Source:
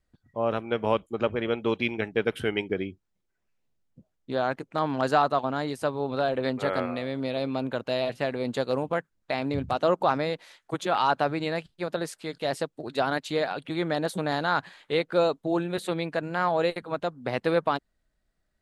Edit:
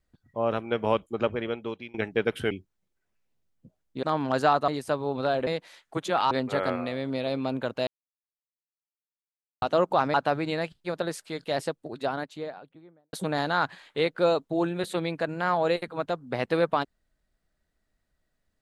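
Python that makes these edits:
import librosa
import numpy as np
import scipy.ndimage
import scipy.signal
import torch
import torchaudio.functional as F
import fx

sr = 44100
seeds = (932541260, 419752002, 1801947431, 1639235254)

y = fx.studio_fade_out(x, sr, start_s=12.45, length_s=1.62)
y = fx.edit(y, sr, fx.fade_out_to(start_s=1.24, length_s=0.7, floor_db=-23.0),
    fx.cut(start_s=2.51, length_s=0.33),
    fx.cut(start_s=4.36, length_s=0.36),
    fx.cut(start_s=5.37, length_s=0.25),
    fx.silence(start_s=7.97, length_s=1.75),
    fx.move(start_s=10.24, length_s=0.84, to_s=6.41), tone=tone)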